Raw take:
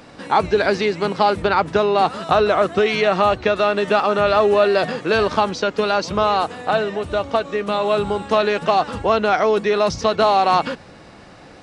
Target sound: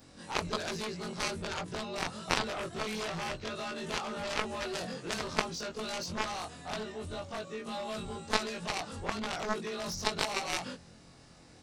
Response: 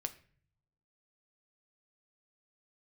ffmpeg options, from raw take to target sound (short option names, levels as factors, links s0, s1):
-af "afftfilt=real='re':imag='-im':win_size=2048:overlap=0.75,bass=f=250:g=8,treble=f=4000:g=14,aeval=exprs='0.531*(cos(1*acos(clip(val(0)/0.531,-1,1)))-cos(1*PI/2))+0.237*(cos(3*acos(clip(val(0)/0.531,-1,1)))-cos(3*PI/2))':c=same,volume=0.708"